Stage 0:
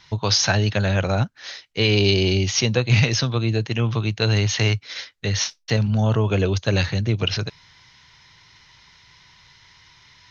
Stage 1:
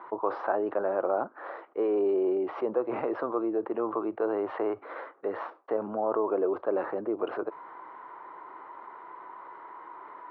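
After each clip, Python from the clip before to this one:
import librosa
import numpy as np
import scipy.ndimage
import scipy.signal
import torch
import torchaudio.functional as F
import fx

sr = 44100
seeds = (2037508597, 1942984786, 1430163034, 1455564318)

y = scipy.signal.sosfilt(scipy.signal.ellip(3, 1.0, 70, [330.0, 1200.0], 'bandpass', fs=sr, output='sos'), x)
y = fx.env_flatten(y, sr, amount_pct=50)
y = y * 10.0 ** (-4.5 / 20.0)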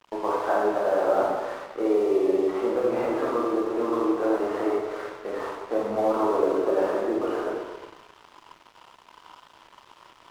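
y = np.sign(x) * np.maximum(np.abs(x) - 10.0 ** (-48.0 / 20.0), 0.0)
y = fx.rev_plate(y, sr, seeds[0], rt60_s=1.4, hf_ratio=0.75, predelay_ms=0, drr_db=-6.0)
y = np.sign(y) * np.maximum(np.abs(y) - 10.0 ** (-45.0 / 20.0), 0.0)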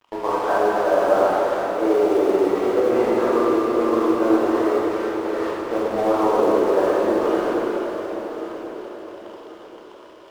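y = fx.law_mismatch(x, sr, coded='A')
y = fx.echo_feedback(y, sr, ms=1089, feedback_pct=34, wet_db=-12.5)
y = fx.rev_plate(y, sr, seeds[1], rt60_s=4.5, hf_ratio=0.95, predelay_ms=0, drr_db=-0.5)
y = y * 10.0 ** (3.0 / 20.0)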